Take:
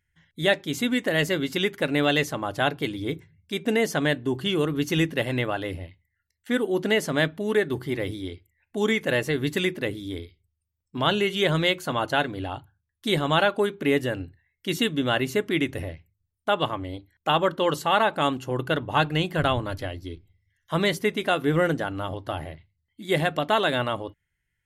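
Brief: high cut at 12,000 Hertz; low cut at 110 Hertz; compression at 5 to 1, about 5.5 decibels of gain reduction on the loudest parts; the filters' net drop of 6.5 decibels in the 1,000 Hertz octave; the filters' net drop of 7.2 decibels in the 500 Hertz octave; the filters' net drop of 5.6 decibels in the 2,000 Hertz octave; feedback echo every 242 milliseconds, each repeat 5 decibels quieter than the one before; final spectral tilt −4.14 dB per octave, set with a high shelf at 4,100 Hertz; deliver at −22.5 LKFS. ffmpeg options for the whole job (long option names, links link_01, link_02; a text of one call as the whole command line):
ffmpeg -i in.wav -af "highpass=110,lowpass=12000,equalizer=frequency=500:width_type=o:gain=-8,equalizer=frequency=1000:width_type=o:gain=-4.5,equalizer=frequency=2000:width_type=o:gain=-4.5,highshelf=frequency=4100:gain=-3.5,acompressor=threshold=-28dB:ratio=5,aecho=1:1:242|484|726|968|1210|1452|1694:0.562|0.315|0.176|0.0988|0.0553|0.031|0.0173,volume=10dB" out.wav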